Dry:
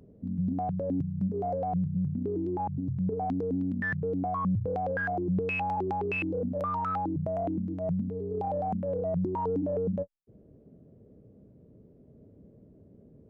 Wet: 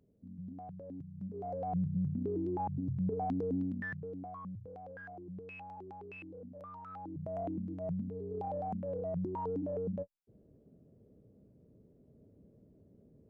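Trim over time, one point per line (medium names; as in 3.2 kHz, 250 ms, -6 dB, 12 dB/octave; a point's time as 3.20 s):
1.06 s -16 dB
1.80 s -4 dB
3.60 s -4 dB
3.99 s -11.5 dB
4.63 s -18 dB
6.87 s -18 dB
7.38 s -7 dB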